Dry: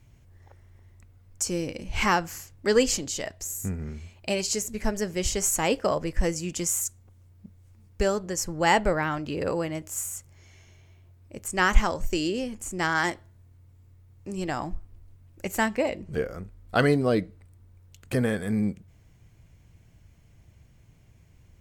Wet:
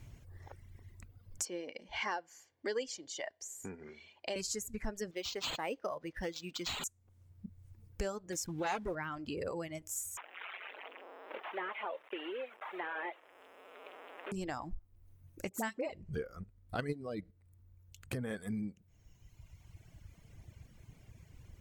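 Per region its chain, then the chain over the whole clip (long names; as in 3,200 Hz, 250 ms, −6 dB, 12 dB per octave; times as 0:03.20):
0:01.45–0:04.36: three-way crossover with the lows and the highs turned down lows −18 dB, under 310 Hz, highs −23 dB, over 6,200 Hz + notch comb filter 1,300 Hz
0:05.11–0:06.84: high-pass filter 390 Hz 6 dB per octave + linearly interpolated sample-rate reduction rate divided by 4×
0:08.32–0:08.95: converter with a step at zero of −36 dBFS + notch comb filter 660 Hz + highs frequency-modulated by the lows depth 0.35 ms
0:10.17–0:14.32: linear delta modulator 16 kbit/s, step −34 dBFS + high-pass filter 450 Hz 24 dB per octave + bit-depth reduction 12 bits, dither none
0:15.49–0:15.92: high-pass filter 140 Hz + all-pass dispersion highs, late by 48 ms, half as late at 870 Hz
0:16.44–0:18.31: high-pass filter 49 Hz + low-shelf EQ 120 Hz +8.5 dB + output level in coarse steps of 9 dB
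whole clip: reverb reduction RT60 1.7 s; downward compressor 2.5 to 1, threshold −46 dBFS; level +3.5 dB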